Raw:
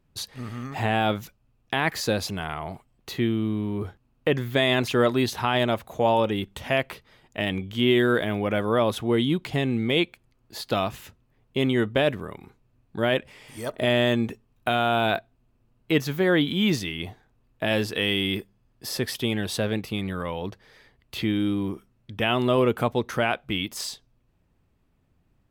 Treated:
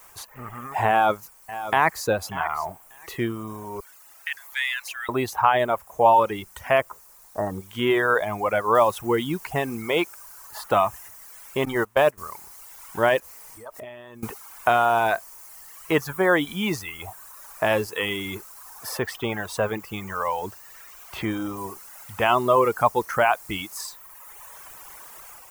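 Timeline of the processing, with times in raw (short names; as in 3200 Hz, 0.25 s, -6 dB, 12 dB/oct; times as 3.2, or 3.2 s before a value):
0.89–2.07 echo throw 0.59 s, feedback 25%, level -12 dB
3.8–5.09 steep high-pass 1700 Hz 48 dB/oct
6.81–7.62 steep low-pass 1400 Hz
8.75 noise floor step -49 dB -43 dB
11.65–12.18 gate -24 dBFS, range -12 dB
13.19–14.23 compressor, threshold -37 dBFS
18.99–21.57 bell 11000 Hz -5.5 dB
whole clip: reverb removal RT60 1.6 s; graphic EQ 125/250/1000/4000 Hz -5/-7/+9/-11 dB; AGC gain up to 3.5 dB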